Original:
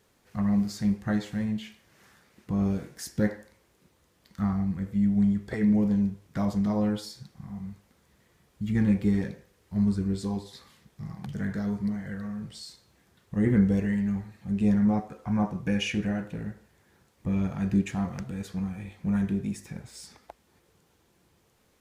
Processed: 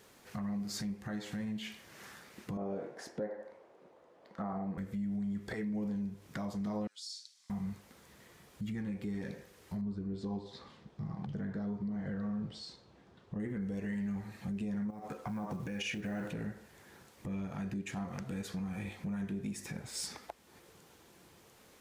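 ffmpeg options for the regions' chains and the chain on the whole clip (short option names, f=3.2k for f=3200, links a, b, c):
-filter_complex "[0:a]asettb=1/sr,asplit=3[a][b][c];[a]atrim=end=2.574[d];[b]atrim=start=2.57:end=4.78,asetpts=PTS-STARTPTS,afade=t=in:d=0.004:c=qsin,afade=t=out:st=2.206:d=0.004:c=qsin,acontrast=62,bandpass=f=600:t=q:w=1.8[e];[c]atrim=start=4.776[f];[d][e]acrossfade=d=0.004:c1=hsin:c2=qsin[g];[g][f]acrossfade=d=0.004:c1=qsin:c2=hsin,asettb=1/sr,asplit=3[h][i][j];[h]atrim=end=6.874[k];[i]atrim=start=6.87:end=7.5,asetpts=PTS-STARTPTS,afade=t=in:d=0.004:c=qsin,afade=t=out:st=0.626:d=0.004:c=qsin,asuperpass=centerf=5800:order=4:qfactor=1.2,acompressor=threshold=-45dB:ratio=10:attack=3.2:release=140:knee=1:detection=peak[l];[j]atrim=start=7.496[m];[k][l]acrossfade=d=0.004:c1=hsin:c2=qsin[n];[n][m]acrossfade=d=0.004:c1=qsin:c2=hsin,asettb=1/sr,asplit=3[o][p][q];[o]atrim=end=9.814[r];[p]atrim=start=9.81:end=13.4,asetpts=PTS-STARTPTS,afade=t=in:d=0.004:c=qsin,afade=t=out:st=3.586:d=0.004:c=qsin,lowpass=3k,equalizer=f=2k:w=1:g=-9[s];[q]atrim=start=13.396[t];[r][s]acrossfade=d=0.004:c1=hsin:c2=qsin[u];[u][t]acrossfade=d=0.004:c1=qsin:c2=hsin,asettb=1/sr,asplit=3[v][w][x];[v]atrim=end=14.904[y];[w]atrim=start=14.9:end=16.32,asetpts=PTS-STARTPTS,afade=t=in:d=0.004:c=qsin,afade=t=out:st=1.416:d=0.004:c=qsin,acompressor=threshold=-33dB:ratio=20:attack=3.2:release=140:knee=1:detection=peak,acrusher=bits=9:mode=log:mix=0:aa=0.000001[z];[x]atrim=start=16.316[aa];[y][z]acrossfade=d=0.004:c1=hsin:c2=qsin[ab];[ab][aa]acrossfade=d=0.004:c1=qsin:c2=hsin,acompressor=threshold=-33dB:ratio=3,alimiter=level_in=10.5dB:limit=-24dB:level=0:latency=1:release=292,volume=-10.5dB,lowshelf=f=130:g=-9.5,volume=7dB"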